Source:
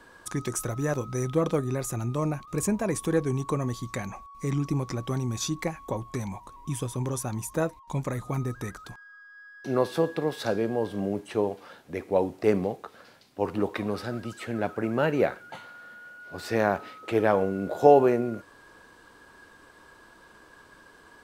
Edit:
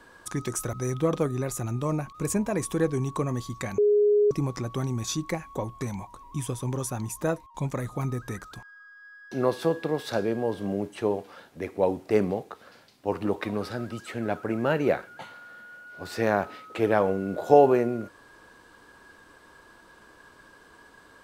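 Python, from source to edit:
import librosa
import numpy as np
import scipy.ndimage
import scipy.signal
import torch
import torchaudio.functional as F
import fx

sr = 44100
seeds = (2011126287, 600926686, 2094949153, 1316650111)

y = fx.edit(x, sr, fx.cut(start_s=0.73, length_s=0.33),
    fx.bleep(start_s=4.11, length_s=0.53, hz=415.0, db=-17.0), tone=tone)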